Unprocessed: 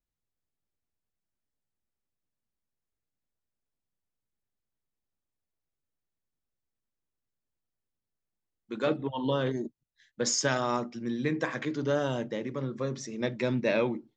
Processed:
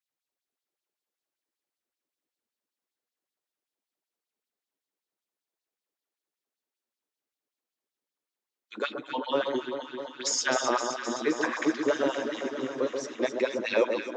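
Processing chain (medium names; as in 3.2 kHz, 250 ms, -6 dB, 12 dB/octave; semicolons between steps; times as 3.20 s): LFO high-pass sine 5.2 Hz 300–4200 Hz; echo whose repeats swap between lows and highs 130 ms, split 1.3 kHz, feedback 84%, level -6 dB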